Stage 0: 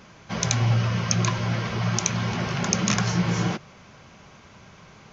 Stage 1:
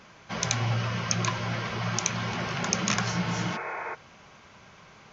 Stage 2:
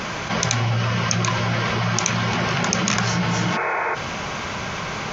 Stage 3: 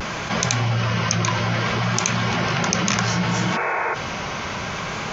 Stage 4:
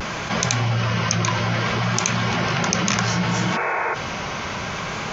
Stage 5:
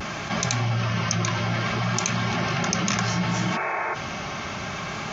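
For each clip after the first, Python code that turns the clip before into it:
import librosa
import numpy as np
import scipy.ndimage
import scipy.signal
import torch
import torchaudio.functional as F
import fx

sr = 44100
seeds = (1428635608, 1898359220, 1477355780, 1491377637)

y1 = fx.high_shelf(x, sr, hz=5300.0, db=-5.5)
y1 = fx.spec_repair(y1, sr, seeds[0], start_s=3.16, length_s=0.76, low_hz=340.0, high_hz=2600.0, source='before')
y1 = fx.low_shelf(y1, sr, hz=430.0, db=-7.5)
y2 = fx.env_flatten(y1, sr, amount_pct=70)
y2 = F.gain(torch.from_numpy(y2), 4.0).numpy()
y3 = fx.vibrato(y2, sr, rate_hz=0.64, depth_cents=35.0)
y4 = y3
y5 = fx.notch_comb(y4, sr, f0_hz=490.0)
y5 = F.gain(torch.from_numpy(y5), -2.5).numpy()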